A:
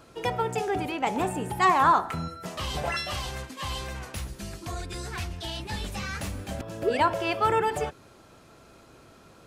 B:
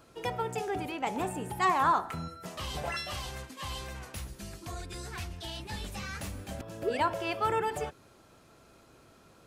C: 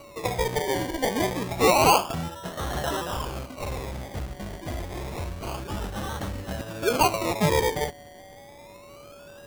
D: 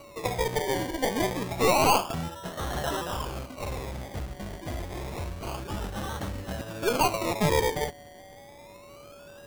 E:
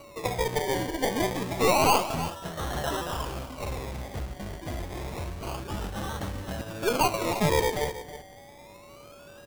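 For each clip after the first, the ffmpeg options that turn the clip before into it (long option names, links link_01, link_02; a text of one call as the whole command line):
ffmpeg -i in.wav -af "highshelf=frequency=10000:gain=4.5,volume=-5.5dB" out.wav
ffmpeg -i in.wav -af "aeval=exprs='val(0)+0.00251*sin(2*PI*570*n/s)':channel_layout=same,acrusher=samples=26:mix=1:aa=0.000001:lfo=1:lforange=15.6:lforate=0.28,volume=7dB" out.wav
ffmpeg -i in.wav -af "aeval=exprs='(tanh(5.01*val(0)+0.45)-tanh(0.45))/5.01':channel_layout=same" out.wav
ffmpeg -i in.wav -af "aecho=1:1:320:0.224" out.wav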